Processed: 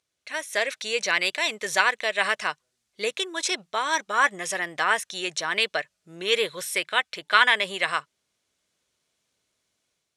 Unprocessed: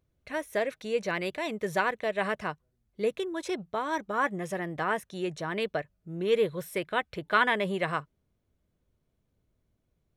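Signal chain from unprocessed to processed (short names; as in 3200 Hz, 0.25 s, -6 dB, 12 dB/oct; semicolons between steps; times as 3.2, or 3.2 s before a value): weighting filter ITU-R 468; AGC gain up to 5.5 dB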